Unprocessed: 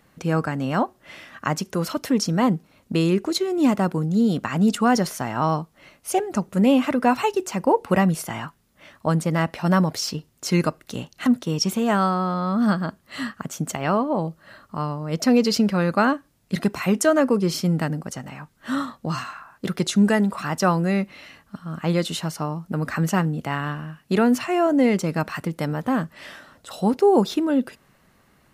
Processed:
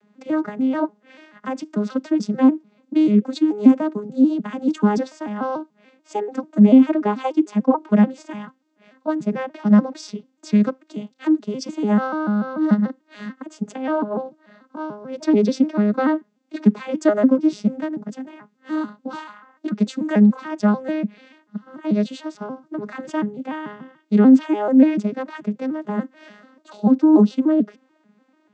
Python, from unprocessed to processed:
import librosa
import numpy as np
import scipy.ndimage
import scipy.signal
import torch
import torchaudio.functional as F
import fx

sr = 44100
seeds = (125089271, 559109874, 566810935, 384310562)

y = fx.vocoder_arp(x, sr, chord='major triad', root=56, every_ms=146)
y = y * 10.0 ** (3.5 / 20.0)